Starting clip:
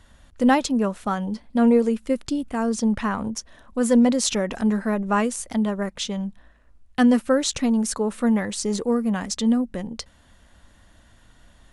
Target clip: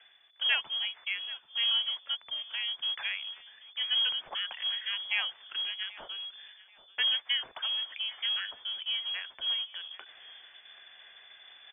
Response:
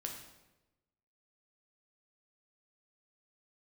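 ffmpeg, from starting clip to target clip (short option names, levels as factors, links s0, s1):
-filter_complex "[0:a]highshelf=f=2700:g=-9.5,acrusher=bits=6:mode=log:mix=0:aa=0.000001,areverse,acompressor=mode=upward:threshold=0.0316:ratio=2.5,areverse,lowpass=f=3000:t=q:w=0.5098,lowpass=f=3000:t=q:w=0.6013,lowpass=f=3000:t=q:w=0.9,lowpass=f=3000:t=q:w=2.563,afreqshift=-3500,acrossover=split=540 2100:gain=0.224 1 0.112[s0][s1][s2];[s0][s1][s2]amix=inputs=3:normalize=0,asplit=2[s3][s4];[s4]adelay=784,lowpass=f=2200:p=1,volume=0.15,asplit=2[s5][s6];[s6]adelay=784,lowpass=f=2200:p=1,volume=0.37,asplit=2[s7][s8];[s8]adelay=784,lowpass=f=2200:p=1,volume=0.37[s9];[s3][s5][s7][s9]amix=inputs=4:normalize=0"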